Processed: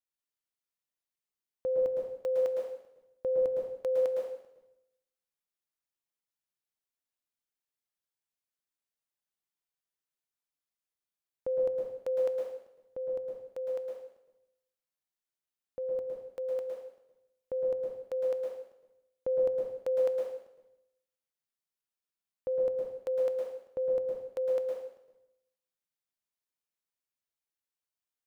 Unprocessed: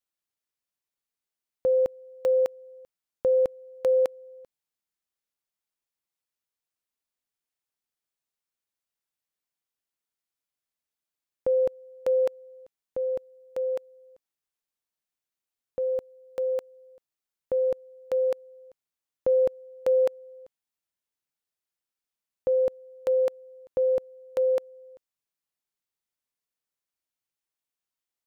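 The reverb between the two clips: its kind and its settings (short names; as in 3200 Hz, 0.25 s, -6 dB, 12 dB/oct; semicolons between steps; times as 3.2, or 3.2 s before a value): plate-style reverb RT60 0.77 s, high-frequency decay 0.95×, pre-delay 0.1 s, DRR -1 dB; gain -8.5 dB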